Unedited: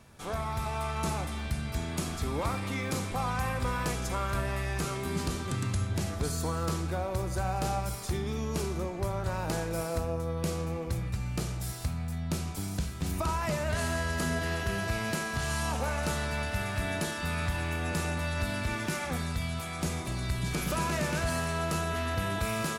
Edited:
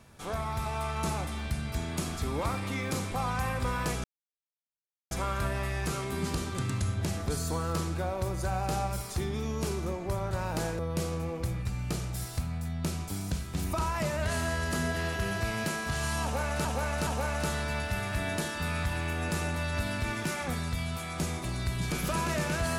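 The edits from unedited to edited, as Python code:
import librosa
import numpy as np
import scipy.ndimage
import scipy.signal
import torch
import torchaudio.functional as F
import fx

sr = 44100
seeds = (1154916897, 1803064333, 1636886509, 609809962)

y = fx.edit(x, sr, fx.insert_silence(at_s=4.04, length_s=1.07),
    fx.cut(start_s=9.72, length_s=0.54),
    fx.repeat(start_s=15.7, length_s=0.42, count=3), tone=tone)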